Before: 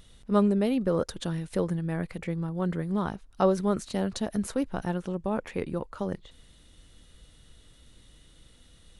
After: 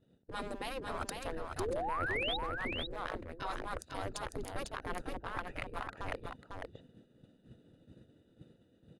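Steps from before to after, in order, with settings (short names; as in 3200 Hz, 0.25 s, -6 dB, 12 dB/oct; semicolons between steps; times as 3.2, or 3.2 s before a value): Wiener smoothing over 41 samples; spectral gate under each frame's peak -15 dB weak; expander -59 dBFS; low shelf 110 Hz +7 dB; notch 5700 Hz, Q 13; reverse; compressor 12:1, threshold -51 dBFS, peak gain reduction 18.5 dB; reverse; painted sound rise, 1.59–2.37, 350–4000 Hz -51 dBFS; on a send: echo 0.5 s -4.5 dB; on the sum: gain +14.5 dB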